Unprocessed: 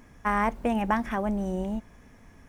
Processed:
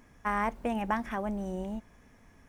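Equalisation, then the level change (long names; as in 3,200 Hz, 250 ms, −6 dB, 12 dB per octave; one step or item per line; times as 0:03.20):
low-shelf EQ 340 Hz −2.5 dB
−4.0 dB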